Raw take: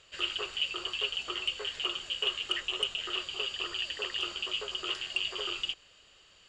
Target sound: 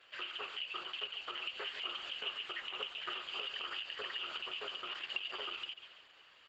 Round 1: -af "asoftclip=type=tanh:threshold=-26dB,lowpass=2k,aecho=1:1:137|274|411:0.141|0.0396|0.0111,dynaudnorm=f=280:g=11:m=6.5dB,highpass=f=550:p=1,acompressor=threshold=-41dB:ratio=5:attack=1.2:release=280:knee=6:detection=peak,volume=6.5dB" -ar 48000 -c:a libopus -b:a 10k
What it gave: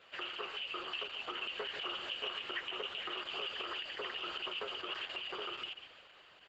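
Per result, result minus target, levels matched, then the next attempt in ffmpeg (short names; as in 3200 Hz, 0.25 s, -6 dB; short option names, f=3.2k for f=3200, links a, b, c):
soft clip: distortion +19 dB; 500 Hz band +5.0 dB
-af "asoftclip=type=tanh:threshold=-14dB,lowpass=2k,aecho=1:1:137|274|411:0.141|0.0396|0.0111,dynaudnorm=f=280:g=11:m=6.5dB,highpass=f=550:p=1,acompressor=threshold=-41dB:ratio=5:attack=1.2:release=280:knee=6:detection=peak,volume=6.5dB" -ar 48000 -c:a libopus -b:a 10k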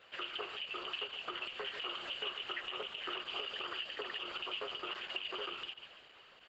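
500 Hz band +5.0 dB
-af "asoftclip=type=tanh:threshold=-14dB,lowpass=2k,aecho=1:1:137|274|411:0.141|0.0396|0.0111,dynaudnorm=f=280:g=11:m=6.5dB,highpass=f=1.5k:p=1,acompressor=threshold=-41dB:ratio=5:attack=1.2:release=280:knee=6:detection=peak,volume=6.5dB" -ar 48000 -c:a libopus -b:a 10k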